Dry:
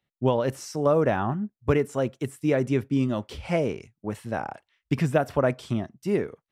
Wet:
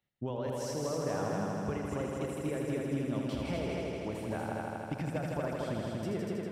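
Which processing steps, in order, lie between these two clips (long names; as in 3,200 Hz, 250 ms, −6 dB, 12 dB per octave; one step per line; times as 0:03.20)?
downward compressor, threshold −29 dBFS, peak gain reduction 12.5 dB
echo machine with several playback heads 80 ms, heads all three, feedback 72%, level −6 dB
level −5.5 dB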